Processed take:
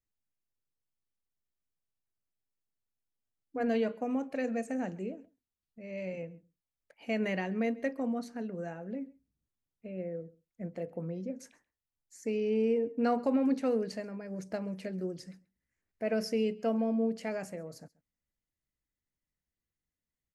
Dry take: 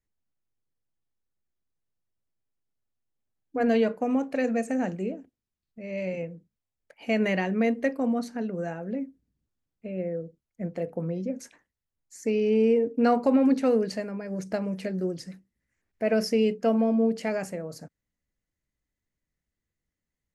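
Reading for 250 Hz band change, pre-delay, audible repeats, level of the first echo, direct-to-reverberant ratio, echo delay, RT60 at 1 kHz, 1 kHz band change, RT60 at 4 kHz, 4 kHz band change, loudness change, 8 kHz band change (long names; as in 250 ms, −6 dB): −7.0 dB, no reverb audible, 1, −23.5 dB, no reverb audible, 134 ms, no reverb audible, −7.0 dB, no reverb audible, −7.0 dB, −7.0 dB, −7.0 dB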